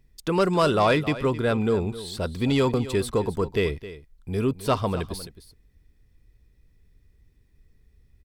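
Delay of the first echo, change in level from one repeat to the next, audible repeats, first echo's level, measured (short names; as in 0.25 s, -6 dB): 0.264 s, no steady repeat, 1, -15.0 dB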